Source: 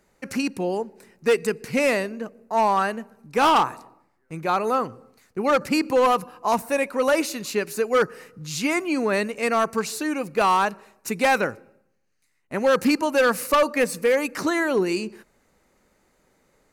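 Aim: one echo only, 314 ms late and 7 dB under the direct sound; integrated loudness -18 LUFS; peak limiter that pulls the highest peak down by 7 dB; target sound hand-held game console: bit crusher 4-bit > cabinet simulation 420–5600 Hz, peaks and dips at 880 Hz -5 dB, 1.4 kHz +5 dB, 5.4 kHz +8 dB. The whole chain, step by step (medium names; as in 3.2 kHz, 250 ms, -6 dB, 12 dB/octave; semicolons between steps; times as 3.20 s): peak limiter -20.5 dBFS; delay 314 ms -7 dB; bit crusher 4-bit; cabinet simulation 420–5600 Hz, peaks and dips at 880 Hz -5 dB, 1.4 kHz +5 dB, 5.4 kHz +8 dB; trim +8.5 dB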